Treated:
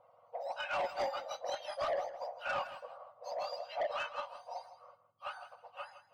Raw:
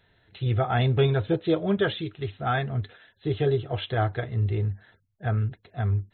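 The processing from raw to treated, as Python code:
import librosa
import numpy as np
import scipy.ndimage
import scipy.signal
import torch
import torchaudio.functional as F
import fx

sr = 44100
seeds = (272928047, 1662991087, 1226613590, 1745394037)

y = fx.octave_mirror(x, sr, pivot_hz=1400.0)
y = scipy.signal.sosfilt(scipy.signal.butter(2, 2200.0, 'lowpass', fs=sr, output='sos'), y)
y = fx.peak_eq(y, sr, hz=730.0, db=14.5, octaves=0.93)
y = 10.0 ** (-24.5 / 20.0) * np.tanh(y / 10.0 ** (-24.5 / 20.0))
y = fx.echo_feedback(y, sr, ms=160, feedback_pct=20, wet_db=-13)
y = y * 10.0 ** (-5.0 / 20.0)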